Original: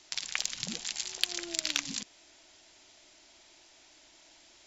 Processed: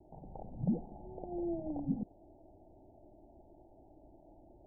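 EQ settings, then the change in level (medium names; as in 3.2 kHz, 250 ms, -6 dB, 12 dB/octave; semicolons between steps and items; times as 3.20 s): steep low-pass 850 Hz 96 dB/octave; bass shelf 250 Hz +11.5 dB; +4.5 dB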